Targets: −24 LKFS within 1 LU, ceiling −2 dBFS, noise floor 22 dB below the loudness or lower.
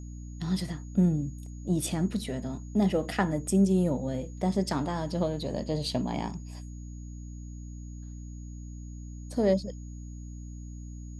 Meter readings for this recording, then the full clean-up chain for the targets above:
mains hum 60 Hz; hum harmonics up to 300 Hz; level of the hum −39 dBFS; interfering tone 6,700 Hz; level of the tone −57 dBFS; integrated loudness −29.5 LKFS; sample peak −12.5 dBFS; target loudness −24.0 LKFS
→ hum removal 60 Hz, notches 5
notch filter 6,700 Hz, Q 30
level +5.5 dB

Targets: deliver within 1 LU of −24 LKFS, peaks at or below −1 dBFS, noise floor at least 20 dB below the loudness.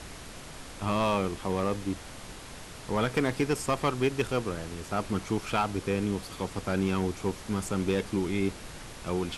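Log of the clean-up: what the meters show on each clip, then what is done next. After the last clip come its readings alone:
share of clipped samples 0.5%; peaks flattened at −18.5 dBFS; background noise floor −44 dBFS; target noise floor −51 dBFS; integrated loudness −30.5 LKFS; sample peak −18.5 dBFS; target loudness −24.0 LKFS
→ clipped peaks rebuilt −18.5 dBFS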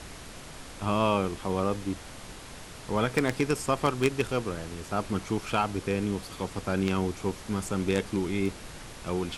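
share of clipped samples 0.0%; background noise floor −44 dBFS; target noise floor −50 dBFS
→ noise reduction from a noise print 6 dB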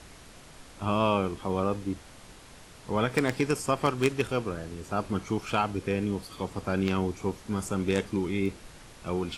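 background noise floor −50 dBFS; integrated loudness −29.5 LKFS; sample peak −9.5 dBFS; target loudness −24.0 LKFS
→ level +5.5 dB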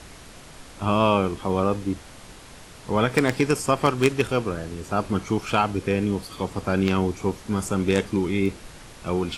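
integrated loudness −24.0 LKFS; sample peak −4.0 dBFS; background noise floor −45 dBFS

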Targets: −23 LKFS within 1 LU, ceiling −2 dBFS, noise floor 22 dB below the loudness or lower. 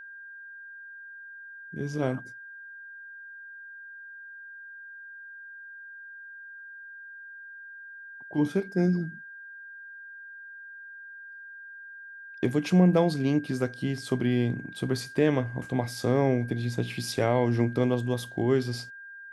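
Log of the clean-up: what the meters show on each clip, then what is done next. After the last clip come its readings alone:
interfering tone 1,600 Hz; level of the tone −42 dBFS; integrated loudness −27.5 LKFS; sample peak −9.5 dBFS; target loudness −23.0 LKFS
→ notch filter 1,600 Hz, Q 30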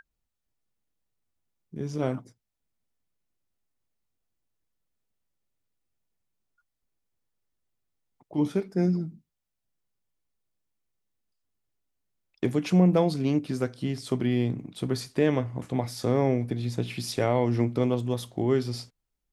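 interfering tone none found; integrated loudness −27.5 LKFS; sample peak −9.5 dBFS; target loudness −23.0 LKFS
→ level +4.5 dB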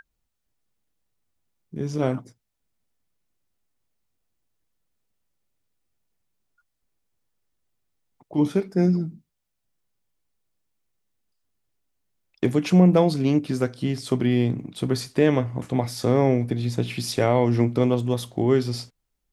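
integrated loudness −23.0 LKFS; sample peak −5.0 dBFS; background noise floor −78 dBFS

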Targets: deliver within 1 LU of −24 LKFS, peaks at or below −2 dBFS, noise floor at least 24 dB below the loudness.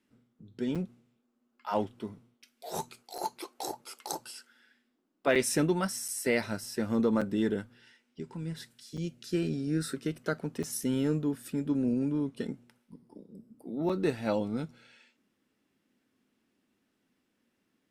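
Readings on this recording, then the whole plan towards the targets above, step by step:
number of dropouts 8; longest dropout 5.9 ms; integrated loudness −32.5 LKFS; sample peak −13.5 dBFS; target loudness −24.0 LKFS
→ repair the gap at 0:00.75/0:03.18/0:05.35/0:06.08/0:07.21/0:08.97/0:10.63/0:13.89, 5.9 ms
level +8.5 dB

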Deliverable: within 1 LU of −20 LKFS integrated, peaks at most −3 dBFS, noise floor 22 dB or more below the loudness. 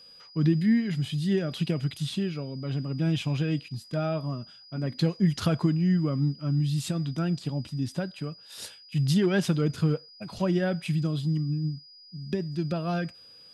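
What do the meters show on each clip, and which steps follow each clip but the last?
interfering tone 4,900 Hz; level of the tone −49 dBFS; integrated loudness −28.0 LKFS; sample peak −12.5 dBFS; target loudness −20.0 LKFS
→ notch filter 4,900 Hz, Q 30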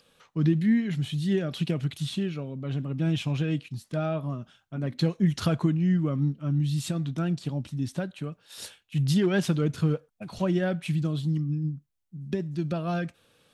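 interfering tone none found; integrated loudness −28.0 LKFS; sample peak −12.5 dBFS; target loudness −20.0 LKFS
→ level +8 dB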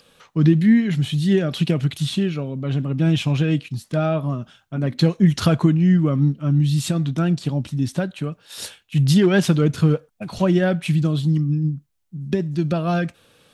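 integrated loudness −20.0 LKFS; sample peak −4.5 dBFS; background noise floor −61 dBFS

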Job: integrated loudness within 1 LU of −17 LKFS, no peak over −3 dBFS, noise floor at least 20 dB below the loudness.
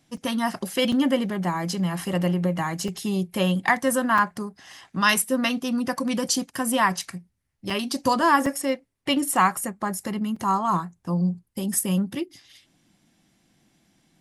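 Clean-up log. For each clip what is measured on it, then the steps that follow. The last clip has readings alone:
number of dropouts 7; longest dropout 4.1 ms; integrated loudness −24.5 LKFS; sample peak −7.0 dBFS; target loudness −17.0 LKFS
→ repair the gap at 0:00.17/0:00.92/0:02.88/0:04.18/0:07.70/0:08.46/0:10.36, 4.1 ms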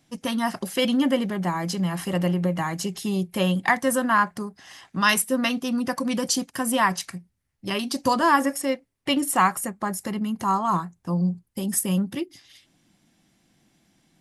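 number of dropouts 0; integrated loudness −24.5 LKFS; sample peak −7.0 dBFS; target loudness −17.0 LKFS
→ level +7.5 dB
brickwall limiter −3 dBFS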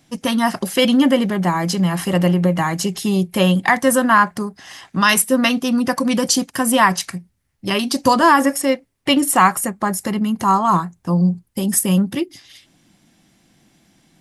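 integrated loudness −17.0 LKFS; sample peak −3.0 dBFS; background noise floor −63 dBFS

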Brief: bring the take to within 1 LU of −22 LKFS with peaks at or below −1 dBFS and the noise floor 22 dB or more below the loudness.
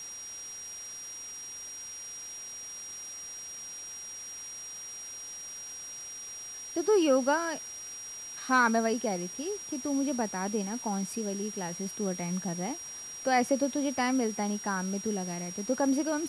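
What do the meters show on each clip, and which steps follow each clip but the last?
interfering tone 5,700 Hz; level of the tone −40 dBFS; background noise floor −43 dBFS; target noise floor −54 dBFS; integrated loudness −32.0 LKFS; sample peak −13.5 dBFS; target loudness −22.0 LKFS
→ notch filter 5,700 Hz, Q 30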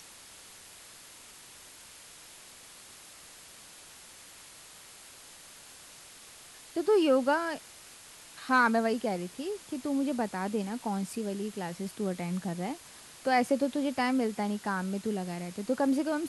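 interfering tone none found; background noise floor −52 dBFS; target noise floor −53 dBFS
→ broadband denoise 6 dB, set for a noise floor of −52 dBFS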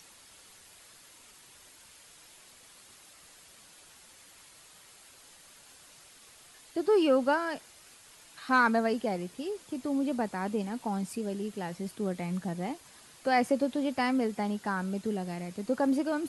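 background noise floor −56 dBFS; integrated loudness −30.5 LKFS; sample peak −14.0 dBFS; target loudness −22.0 LKFS
→ level +8.5 dB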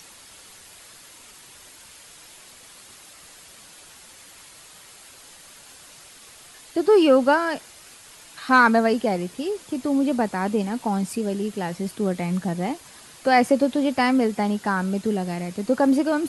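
integrated loudness −22.0 LKFS; sample peak −5.5 dBFS; background noise floor −47 dBFS

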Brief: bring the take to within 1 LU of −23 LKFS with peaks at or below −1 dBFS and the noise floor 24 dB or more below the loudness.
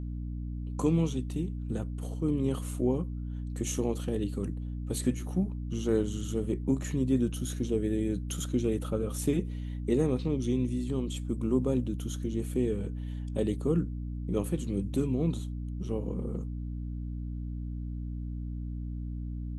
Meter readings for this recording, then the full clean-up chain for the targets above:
mains hum 60 Hz; hum harmonics up to 300 Hz; level of the hum −33 dBFS; integrated loudness −32.0 LKFS; sample peak −14.5 dBFS; target loudness −23.0 LKFS
→ mains-hum notches 60/120/180/240/300 Hz
level +9 dB

